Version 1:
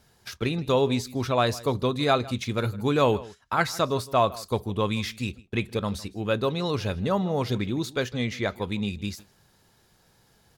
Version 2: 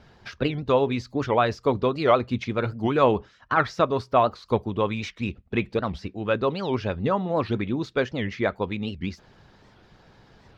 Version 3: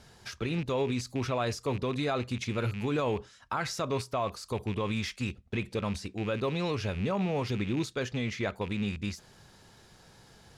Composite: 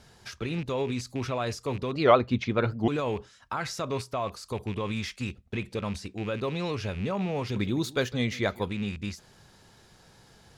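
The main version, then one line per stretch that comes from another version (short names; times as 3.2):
3
1.93–2.88 from 2
7.56–8.68 from 1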